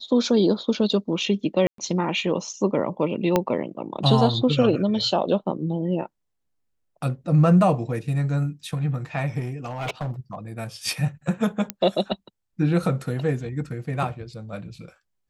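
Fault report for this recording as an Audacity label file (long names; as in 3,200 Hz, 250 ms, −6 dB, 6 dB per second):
1.670000	1.780000	drop-out 113 ms
3.360000	3.360000	click −6 dBFS
9.390000	10.350000	clipping −24.5 dBFS
11.700000	11.700000	click −8 dBFS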